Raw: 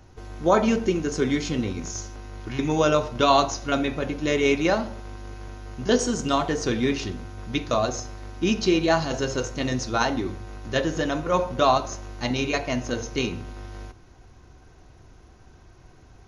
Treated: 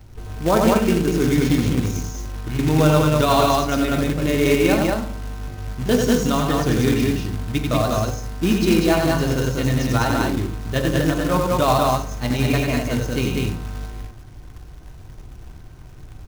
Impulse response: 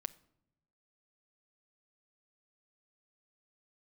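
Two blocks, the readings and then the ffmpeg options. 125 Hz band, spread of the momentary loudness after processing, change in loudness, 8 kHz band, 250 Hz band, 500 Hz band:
+11.0 dB, 12 LU, +5.0 dB, +3.0 dB, +6.5 dB, +3.5 dB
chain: -filter_complex "[0:a]bass=f=250:g=6,treble=f=4k:g=-4,aecho=1:1:90.38|195.3|242:0.631|0.794|0.282,acrusher=bits=3:mode=log:mix=0:aa=0.000001,asplit=2[a][b];[1:a]atrim=start_sample=2205,lowshelf=f=160:g=4.5[c];[b][c]afir=irnorm=-1:irlink=0,volume=14dB[d];[a][d]amix=inputs=2:normalize=0,volume=-14.5dB"

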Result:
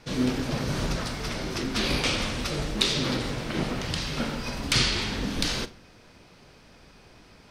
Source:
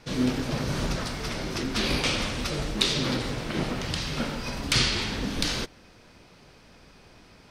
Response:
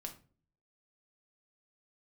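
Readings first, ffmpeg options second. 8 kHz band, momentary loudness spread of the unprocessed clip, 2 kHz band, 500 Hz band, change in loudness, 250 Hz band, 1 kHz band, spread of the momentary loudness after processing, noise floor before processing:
0.0 dB, 8 LU, 0.0 dB, 0.0 dB, 0.0 dB, 0.0 dB, 0.0 dB, 7 LU, -54 dBFS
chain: -filter_complex "[0:a]asplit=2[a][b];[1:a]atrim=start_sample=2205,adelay=42[c];[b][c]afir=irnorm=-1:irlink=0,volume=-12.5dB[d];[a][d]amix=inputs=2:normalize=0"

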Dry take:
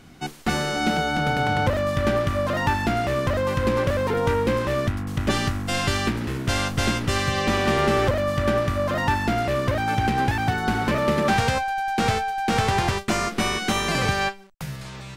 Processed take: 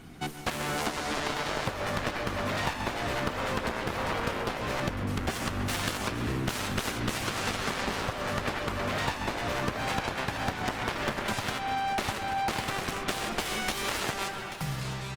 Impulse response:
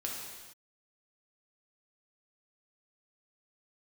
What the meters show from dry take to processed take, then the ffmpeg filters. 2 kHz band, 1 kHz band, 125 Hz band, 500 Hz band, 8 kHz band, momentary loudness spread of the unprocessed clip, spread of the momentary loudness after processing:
-6.5 dB, -8.0 dB, -10.5 dB, -10.5 dB, -4.0 dB, 4 LU, 2 LU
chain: -filter_complex "[0:a]bandreject=f=560:w=12,aeval=exprs='0.422*(cos(1*acos(clip(val(0)/0.422,-1,1)))-cos(1*PI/2))+0.0237*(cos(4*acos(clip(val(0)/0.422,-1,1)))-cos(4*PI/2))+0.133*(cos(7*acos(clip(val(0)/0.422,-1,1)))-cos(7*PI/2))':c=same,asplit=2[a][b];[1:a]atrim=start_sample=2205,lowpass=3k,adelay=130[c];[b][c]afir=irnorm=-1:irlink=0,volume=-10.5dB[d];[a][d]amix=inputs=2:normalize=0,acompressor=threshold=-26dB:ratio=6,aecho=1:1:835:0.251,volume=-1dB" -ar 48000 -c:a libopus -b:a 32k

